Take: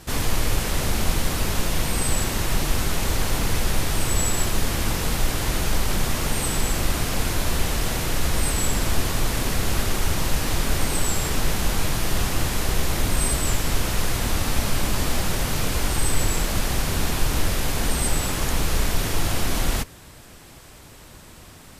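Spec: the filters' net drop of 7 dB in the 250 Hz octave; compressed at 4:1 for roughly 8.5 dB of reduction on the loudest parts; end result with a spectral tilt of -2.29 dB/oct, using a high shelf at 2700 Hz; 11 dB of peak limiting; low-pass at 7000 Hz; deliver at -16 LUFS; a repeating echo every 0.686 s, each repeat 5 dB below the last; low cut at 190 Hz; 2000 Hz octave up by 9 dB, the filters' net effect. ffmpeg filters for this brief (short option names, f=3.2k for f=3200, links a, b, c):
-af "highpass=190,lowpass=7k,equalizer=f=250:t=o:g=-7.5,equalizer=f=2k:t=o:g=8,highshelf=f=2.7k:g=7.5,acompressor=threshold=-30dB:ratio=4,alimiter=level_in=5dB:limit=-24dB:level=0:latency=1,volume=-5dB,aecho=1:1:686|1372|2058|2744|3430|4116|4802:0.562|0.315|0.176|0.0988|0.0553|0.031|0.0173,volume=18.5dB"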